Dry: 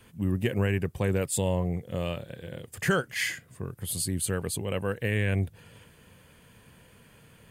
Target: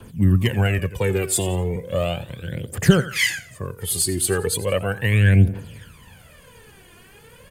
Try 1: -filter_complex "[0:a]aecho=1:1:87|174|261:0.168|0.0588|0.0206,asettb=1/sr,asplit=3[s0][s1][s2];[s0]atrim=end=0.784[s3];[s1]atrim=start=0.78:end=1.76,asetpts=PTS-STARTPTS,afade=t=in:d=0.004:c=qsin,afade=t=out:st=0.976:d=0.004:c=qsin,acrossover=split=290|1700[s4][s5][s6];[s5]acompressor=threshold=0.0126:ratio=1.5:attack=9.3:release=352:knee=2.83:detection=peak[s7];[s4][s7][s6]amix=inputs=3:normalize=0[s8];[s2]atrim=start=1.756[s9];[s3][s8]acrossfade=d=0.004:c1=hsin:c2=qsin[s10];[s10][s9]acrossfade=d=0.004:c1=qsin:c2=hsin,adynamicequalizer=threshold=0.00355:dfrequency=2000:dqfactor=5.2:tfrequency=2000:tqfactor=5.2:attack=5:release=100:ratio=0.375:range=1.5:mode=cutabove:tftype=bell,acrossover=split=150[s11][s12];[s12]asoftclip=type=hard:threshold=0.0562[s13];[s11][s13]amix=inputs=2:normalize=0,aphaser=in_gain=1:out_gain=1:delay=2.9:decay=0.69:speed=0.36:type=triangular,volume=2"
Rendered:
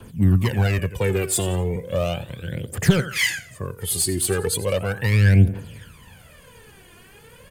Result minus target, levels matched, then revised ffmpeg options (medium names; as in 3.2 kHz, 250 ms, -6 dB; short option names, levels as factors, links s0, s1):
hard clipper: distortion +20 dB
-filter_complex "[0:a]aecho=1:1:87|174|261:0.168|0.0588|0.0206,asettb=1/sr,asplit=3[s0][s1][s2];[s0]atrim=end=0.784[s3];[s1]atrim=start=0.78:end=1.76,asetpts=PTS-STARTPTS,afade=t=in:d=0.004:c=qsin,afade=t=out:st=0.976:d=0.004:c=qsin,acrossover=split=290|1700[s4][s5][s6];[s5]acompressor=threshold=0.0126:ratio=1.5:attack=9.3:release=352:knee=2.83:detection=peak[s7];[s4][s7][s6]amix=inputs=3:normalize=0[s8];[s2]atrim=start=1.756[s9];[s3][s8]acrossfade=d=0.004:c1=hsin:c2=qsin[s10];[s10][s9]acrossfade=d=0.004:c1=qsin:c2=hsin,adynamicequalizer=threshold=0.00355:dfrequency=2000:dqfactor=5.2:tfrequency=2000:tqfactor=5.2:attack=5:release=100:ratio=0.375:range=1.5:mode=cutabove:tftype=bell,acrossover=split=150[s11][s12];[s12]asoftclip=type=hard:threshold=0.15[s13];[s11][s13]amix=inputs=2:normalize=0,aphaser=in_gain=1:out_gain=1:delay=2.9:decay=0.69:speed=0.36:type=triangular,volume=2"